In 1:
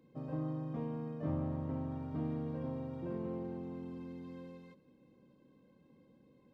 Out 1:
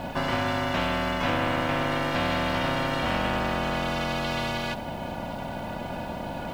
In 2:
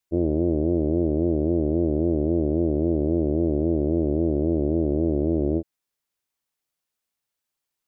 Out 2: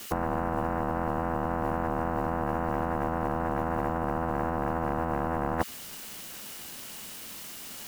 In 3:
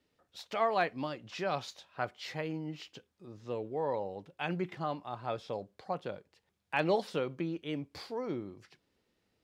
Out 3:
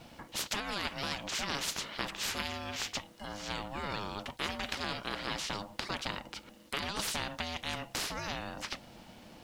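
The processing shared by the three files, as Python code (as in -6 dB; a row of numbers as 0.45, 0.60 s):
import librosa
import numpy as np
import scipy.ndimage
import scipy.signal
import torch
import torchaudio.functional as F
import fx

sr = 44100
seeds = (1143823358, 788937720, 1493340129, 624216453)

y = x * np.sin(2.0 * np.pi * 410.0 * np.arange(len(x)) / sr)
y = fx.small_body(y, sr, hz=(210.0, 2900.0), ring_ms=30, db=9)
y = fx.over_compress(y, sr, threshold_db=-33.0, ratio=-1.0)
y = fx.spectral_comp(y, sr, ratio=4.0)
y = y * 10.0 ** (-12 / 20.0) / np.max(np.abs(y))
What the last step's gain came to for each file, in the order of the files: +13.0, +5.0, +5.5 dB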